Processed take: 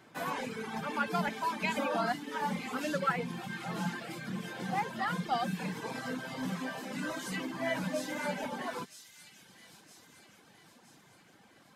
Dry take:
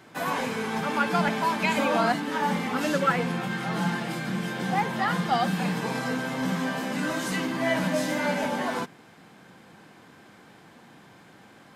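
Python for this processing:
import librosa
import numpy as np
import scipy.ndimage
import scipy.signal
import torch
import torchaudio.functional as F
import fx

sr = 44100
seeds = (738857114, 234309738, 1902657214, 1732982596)

p1 = fx.dereverb_blind(x, sr, rt60_s=1.2)
p2 = p1 + fx.echo_wet_highpass(p1, sr, ms=965, feedback_pct=51, hz=4000.0, wet_db=-6.0, dry=0)
y = p2 * librosa.db_to_amplitude(-6.5)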